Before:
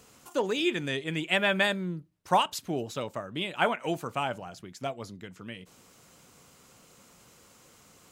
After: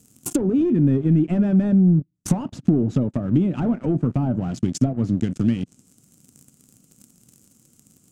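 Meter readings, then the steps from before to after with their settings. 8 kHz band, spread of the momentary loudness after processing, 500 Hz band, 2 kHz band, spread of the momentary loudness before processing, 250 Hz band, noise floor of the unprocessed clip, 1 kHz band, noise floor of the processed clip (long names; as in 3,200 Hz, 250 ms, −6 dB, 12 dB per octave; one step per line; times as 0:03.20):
+8.0 dB, 8 LU, +3.0 dB, −14.5 dB, 17 LU, +17.0 dB, −58 dBFS, −8.0 dB, −60 dBFS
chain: leveller curve on the samples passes 5
treble cut that deepens with the level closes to 970 Hz, closed at −15 dBFS
downward compressor 4 to 1, threshold −28 dBFS, peak gain reduction 12.5 dB
octave-band graphic EQ 125/250/500/1,000/2,000/4,000/8,000 Hz +7/+10/−7/−12/−9/−8/+7 dB
level +5.5 dB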